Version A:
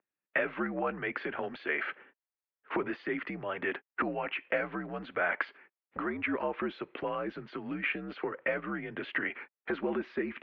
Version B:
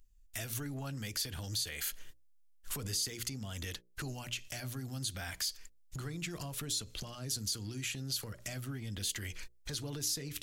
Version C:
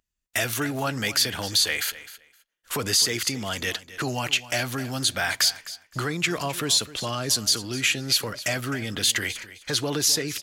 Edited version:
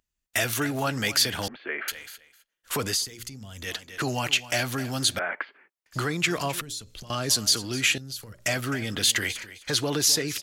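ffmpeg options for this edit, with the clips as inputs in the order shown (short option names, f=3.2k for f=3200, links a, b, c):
-filter_complex "[0:a]asplit=2[a][b];[1:a]asplit=3[c][d][e];[2:a]asplit=6[f][g][h][i][j][k];[f]atrim=end=1.482[l];[a]atrim=start=1.478:end=1.882[m];[g]atrim=start=1.878:end=3.07[n];[c]atrim=start=2.83:end=3.82[o];[h]atrim=start=3.58:end=5.192[p];[b]atrim=start=5.188:end=5.862[q];[i]atrim=start=5.858:end=6.612[r];[d]atrim=start=6.608:end=7.102[s];[j]atrim=start=7.098:end=7.982[t];[e]atrim=start=7.978:end=8.462[u];[k]atrim=start=8.458[v];[l][m]acrossfade=d=0.004:c1=hsin:c2=hsin[w];[w][n]acrossfade=d=0.004:c1=hsin:c2=hsin[x];[x][o]acrossfade=d=0.24:c1=tri:c2=tri[y];[y][p]acrossfade=d=0.24:c1=tri:c2=tri[z];[z][q]acrossfade=d=0.004:c1=hsin:c2=hsin[aa];[aa][r]acrossfade=d=0.004:c1=hsin:c2=hsin[ab];[ab][s]acrossfade=d=0.004:c1=hsin:c2=hsin[ac];[ac][t]acrossfade=d=0.004:c1=hsin:c2=hsin[ad];[ad][u]acrossfade=d=0.004:c1=hsin:c2=hsin[ae];[ae][v]acrossfade=d=0.004:c1=hsin:c2=hsin"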